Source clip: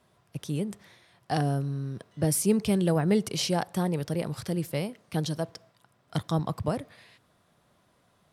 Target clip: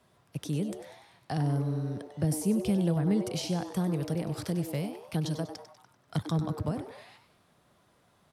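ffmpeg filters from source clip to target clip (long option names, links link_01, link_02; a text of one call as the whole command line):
ffmpeg -i in.wav -filter_complex "[0:a]acrossover=split=250[link_01][link_02];[link_02]acompressor=threshold=-35dB:ratio=5[link_03];[link_01][link_03]amix=inputs=2:normalize=0,asplit=6[link_04][link_05][link_06][link_07][link_08][link_09];[link_05]adelay=97,afreqshift=150,volume=-11dB[link_10];[link_06]adelay=194,afreqshift=300,volume=-17.6dB[link_11];[link_07]adelay=291,afreqshift=450,volume=-24.1dB[link_12];[link_08]adelay=388,afreqshift=600,volume=-30.7dB[link_13];[link_09]adelay=485,afreqshift=750,volume=-37.2dB[link_14];[link_04][link_10][link_11][link_12][link_13][link_14]amix=inputs=6:normalize=0" out.wav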